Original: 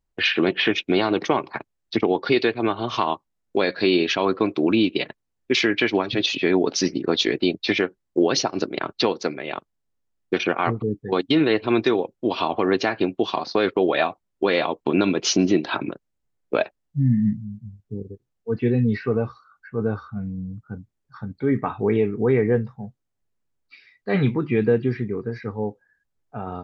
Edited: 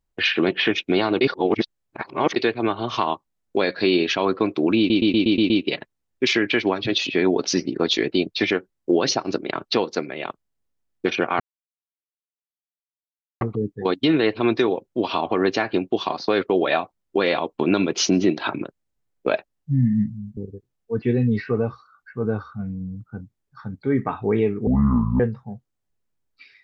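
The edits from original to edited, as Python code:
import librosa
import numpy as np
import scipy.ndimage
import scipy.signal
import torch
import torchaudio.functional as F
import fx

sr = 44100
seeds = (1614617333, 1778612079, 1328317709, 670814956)

y = fx.edit(x, sr, fx.reverse_span(start_s=1.21, length_s=1.15),
    fx.stutter(start_s=4.78, slice_s=0.12, count=7),
    fx.insert_silence(at_s=10.68, length_s=2.01),
    fx.cut(start_s=17.64, length_s=0.3),
    fx.speed_span(start_s=22.24, length_s=0.28, speed=0.53), tone=tone)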